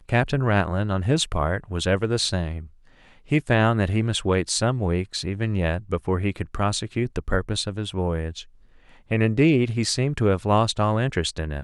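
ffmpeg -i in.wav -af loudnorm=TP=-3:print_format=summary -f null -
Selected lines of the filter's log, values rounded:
Input Integrated:    -23.2 LUFS
Input True Peak:      -5.6 dBTP
Input LRA:             3.7 LU
Input Threshold:     -33.6 LUFS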